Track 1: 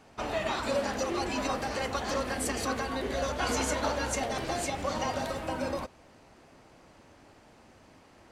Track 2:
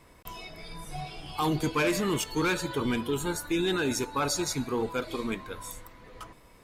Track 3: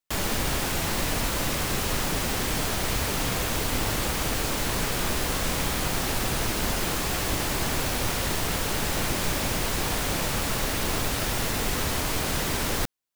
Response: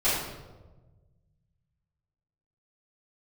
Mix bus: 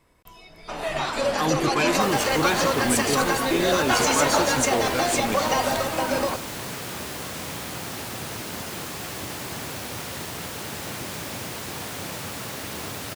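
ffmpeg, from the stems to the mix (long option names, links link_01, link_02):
-filter_complex "[0:a]highpass=frequency=370:poles=1,dynaudnorm=framelen=100:gausssize=21:maxgain=4dB,adelay=500,volume=-3dB[link_01];[1:a]volume=-6.5dB[link_02];[2:a]highpass=frequency=86:width=0.5412,highpass=frequency=86:width=1.3066,adelay=1900,volume=-14.5dB[link_03];[link_01][link_02][link_03]amix=inputs=3:normalize=0,dynaudnorm=framelen=310:gausssize=5:maxgain=9dB"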